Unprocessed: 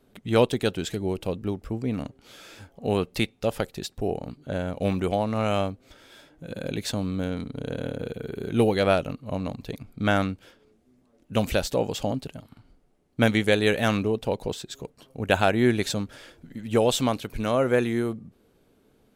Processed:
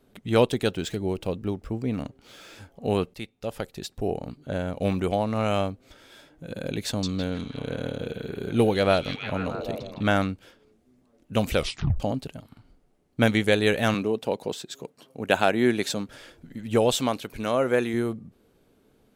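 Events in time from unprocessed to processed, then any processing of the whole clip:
0:00.68–0:02.55: running median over 3 samples
0:03.14–0:04.08: fade in, from −14 dB
0:06.87–0:10.22: echo through a band-pass that steps 158 ms, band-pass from 4,600 Hz, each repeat −0.7 octaves, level −0.5 dB
0:11.54: tape stop 0.46 s
0:13.94–0:16.09: high-pass filter 170 Hz
0:16.94–0:17.94: low-shelf EQ 120 Hz −11 dB

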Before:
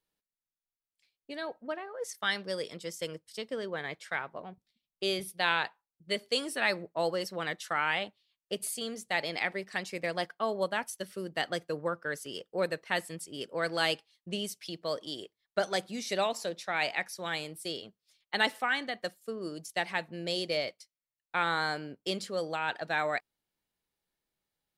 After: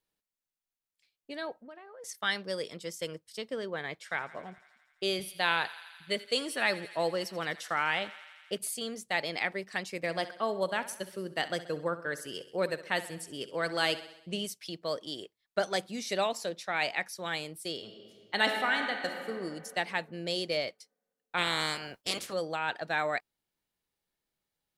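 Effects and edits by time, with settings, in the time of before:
0:01.57–0:02.04: downward compressor 3 to 1, threshold −49 dBFS
0:04.00–0:08.58: feedback echo with a high-pass in the loop 84 ms, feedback 80%, high-pass 710 Hz, level −17 dB
0:09.96–0:14.47: repeating echo 65 ms, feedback 58%, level −15 dB
0:17.75–0:19.30: thrown reverb, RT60 2.3 s, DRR 3.5 dB
0:21.37–0:22.32: ceiling on every frequency bin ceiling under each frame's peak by 24 dB

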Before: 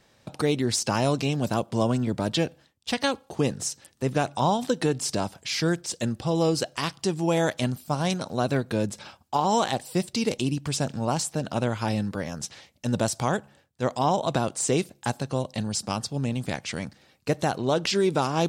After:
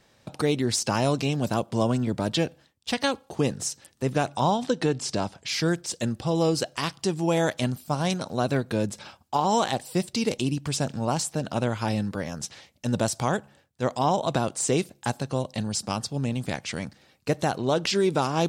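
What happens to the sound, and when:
0:04.51–0:05.48: low-pass filter 7,100 Hz

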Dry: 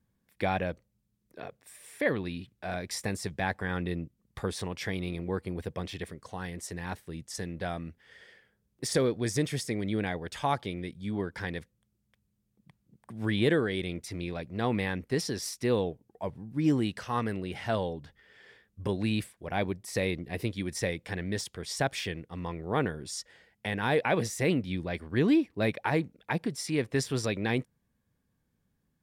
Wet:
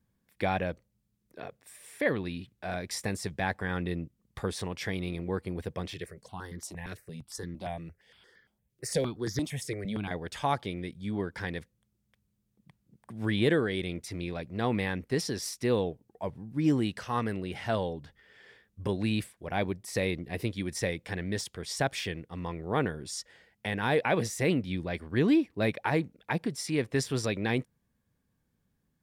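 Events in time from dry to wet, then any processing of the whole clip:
0:05.94–0:10.11: step-sequenced phaser 8.7 Hz 230–2,600 Hz

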